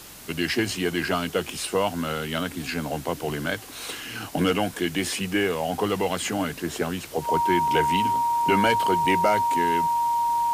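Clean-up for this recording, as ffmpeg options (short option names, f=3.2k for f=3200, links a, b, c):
-af "adeclick=t=4,bandreject=f=46.9:t=h:w=4,bandreject=f=93.8:t=h:w=4,bandreject=f=140.7:t=h:w=4,bandreject=f=940:w=30,afwtdn=0.0071"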